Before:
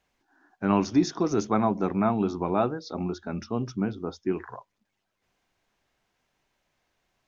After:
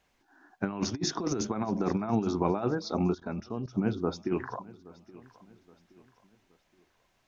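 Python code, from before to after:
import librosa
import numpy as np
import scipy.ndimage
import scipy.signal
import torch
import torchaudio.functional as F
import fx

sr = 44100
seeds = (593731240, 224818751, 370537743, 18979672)

p1 = fx.over_compress(x, sr, threshold_db=-27.0, ratio=-0.5)
p2 = p1 + fx.echo_feedback(p1, sr, ms=822, feedback_pct=40, wet_db=-21.0, dry=0)
y = fx.level_steps(p2, sr, step_db=17, at=(3.13, 3.75))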